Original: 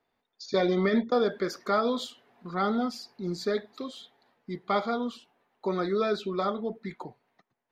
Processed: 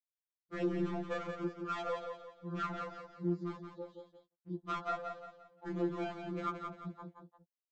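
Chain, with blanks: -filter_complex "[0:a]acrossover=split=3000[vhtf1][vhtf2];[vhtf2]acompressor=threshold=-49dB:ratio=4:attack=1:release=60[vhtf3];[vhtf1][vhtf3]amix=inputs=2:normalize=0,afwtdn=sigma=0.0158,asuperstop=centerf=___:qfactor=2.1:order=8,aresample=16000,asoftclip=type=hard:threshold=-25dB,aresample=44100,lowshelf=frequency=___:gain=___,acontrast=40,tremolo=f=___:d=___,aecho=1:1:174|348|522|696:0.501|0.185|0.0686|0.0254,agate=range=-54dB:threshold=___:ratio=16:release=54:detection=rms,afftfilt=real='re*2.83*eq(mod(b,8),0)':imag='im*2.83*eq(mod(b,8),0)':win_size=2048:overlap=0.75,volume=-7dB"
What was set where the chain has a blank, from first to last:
2200, 110, -6.5, 31, 0.75, -51dB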